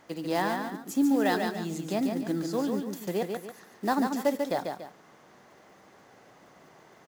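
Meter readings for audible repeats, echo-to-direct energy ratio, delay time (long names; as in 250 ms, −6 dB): 2, −4.5 dB, 143 ms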